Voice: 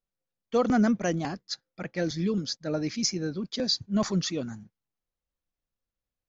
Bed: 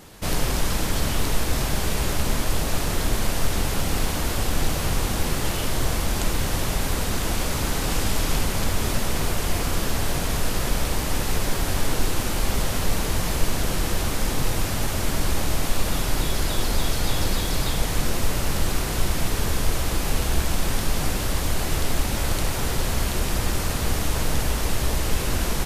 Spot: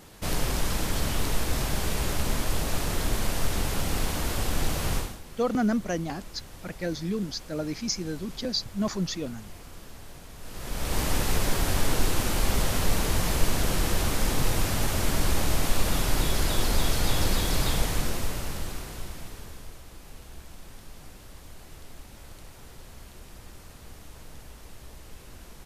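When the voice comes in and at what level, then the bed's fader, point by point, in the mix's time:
4.85 s, −2.0 dB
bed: 0:04.97 −4 dB
0:05.21 −21 dB
0:10.36 −21 dB
0:10.99 −1.5 dB
0:17.75 −1.5 dB
0:19.83 −22.5 dB

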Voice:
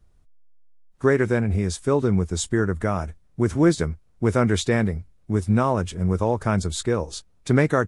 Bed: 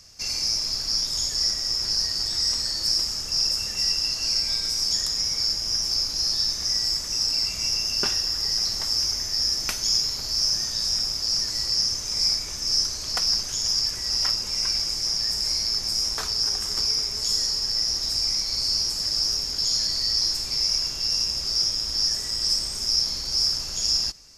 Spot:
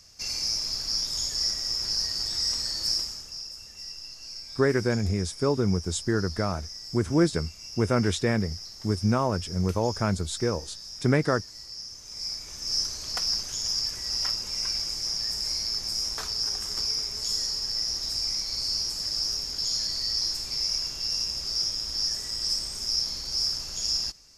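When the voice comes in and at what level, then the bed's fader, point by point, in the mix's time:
3.55 s, −4.0 dB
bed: 0:02.93 −3.5 dB
0:03.46 −16.5 dB
0:11.88 −16.5 dB
0:12.78 −4.5 dB

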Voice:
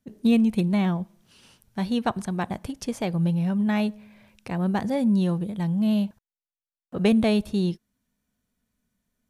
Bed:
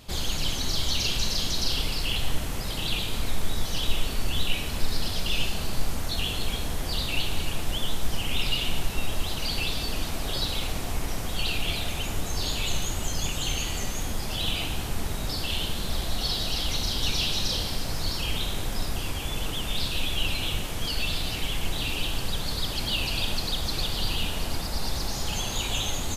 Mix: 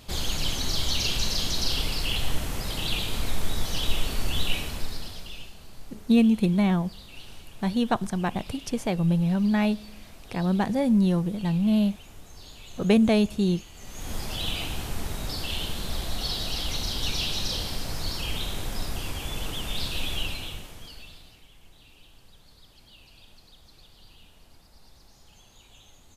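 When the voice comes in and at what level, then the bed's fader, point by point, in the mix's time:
5.85 s, +0.5 dB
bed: 0:04.55 0 dB
0:05.55 −17.5 dB
0:13.73 −17.5 dB
0:14.14 −2 dB
0:20.16 −2 dB
0:21.48 −25.5 dB

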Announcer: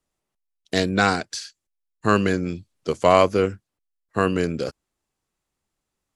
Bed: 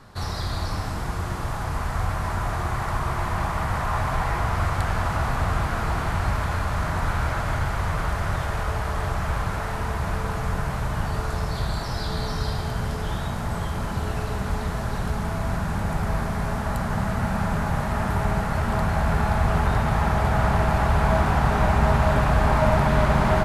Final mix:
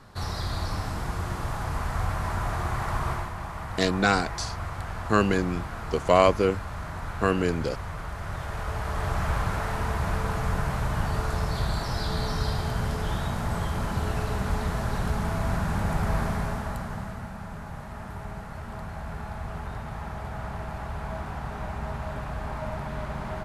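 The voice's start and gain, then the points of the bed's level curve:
3.05 s, −3.0 dB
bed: 0:03.12 −2.5 dB
0:03.33 −10 dB
0:08.11 −10 dB
0:09.20 −1 dB
0:16.29 −1 dB
0:17.35 −14 dB

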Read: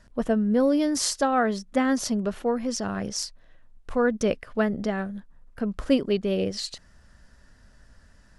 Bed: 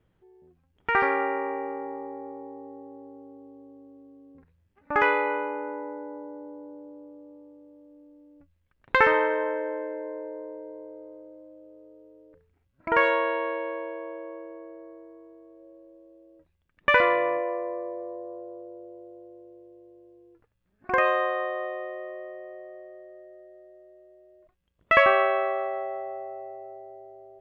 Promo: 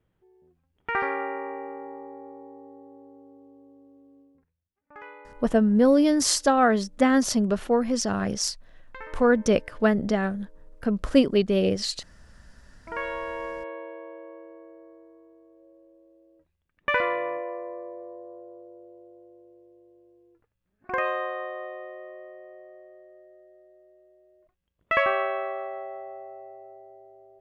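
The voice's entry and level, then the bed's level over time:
5.25 s, +3.0 dB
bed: 0:04.20 −4 dB
0:04.72 −22.5 dB
0:12.19 −22.5 dB
0:13.45 −4.5 dB

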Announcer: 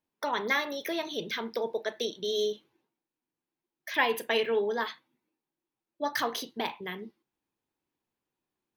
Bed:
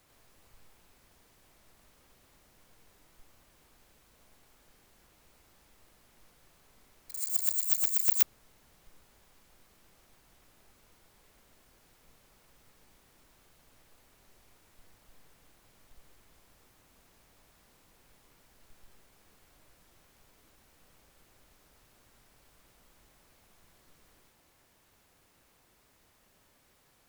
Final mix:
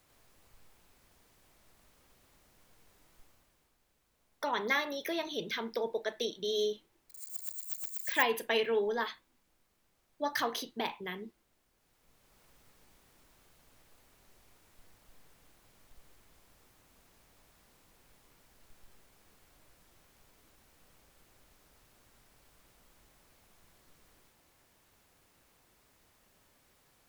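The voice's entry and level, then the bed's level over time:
4.20 s, −2.5 dB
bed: 0:03.22 −2 dB
0:03.77 −11.5 dB
0:11.73 −11.5 dB
0:12.42 −1 dB

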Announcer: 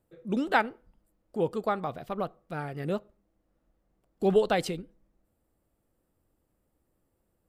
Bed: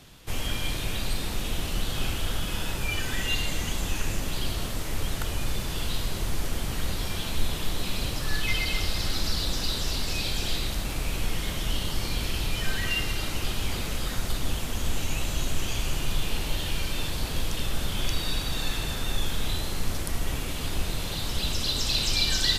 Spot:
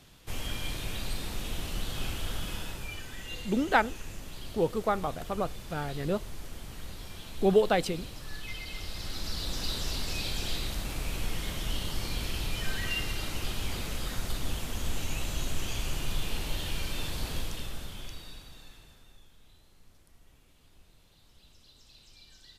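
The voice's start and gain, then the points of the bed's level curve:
3.20 s, +0.5 dB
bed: 0:02.49 −5.5 dB
0:03.09 −13 dB
0:08.63 −13 dB
0:09.68 −4.5 dB
0:17.33 −4.5 dB
0:19.30 −31 dB

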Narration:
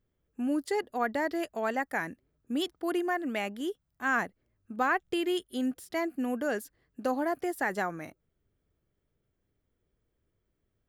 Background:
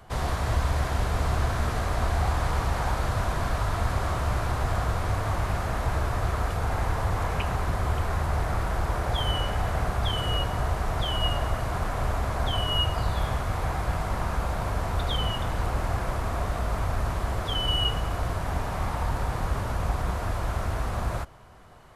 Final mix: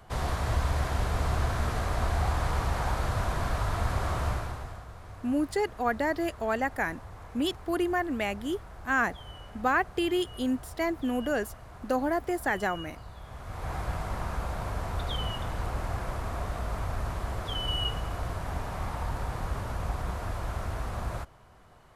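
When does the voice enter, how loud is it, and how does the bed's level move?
4.85 s, +2.0 dB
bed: 0:04.28 −2.5 dB
0:04.85 −18.5 dB
0:13.23 −18.5 dB
0:13.74 −5 dB

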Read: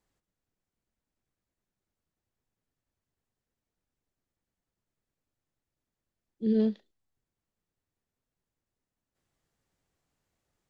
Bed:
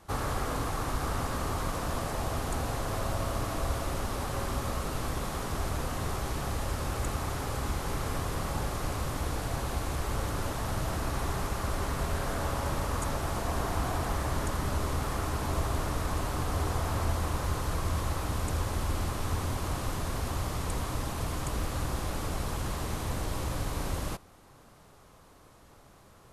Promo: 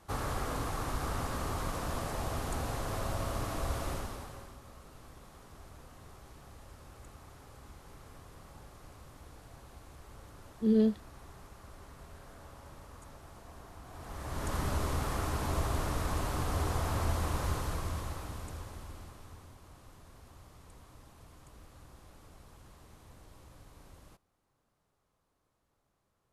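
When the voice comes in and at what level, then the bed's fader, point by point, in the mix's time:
4.20 s, 0.0 dB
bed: 0:03.92 −3.5 dB
0:04.58 −20 dB
0:13.84 −20 dB
0:14.55 −2 dB
0:17.50 −2 dB
0:19.58 −22.5 dB

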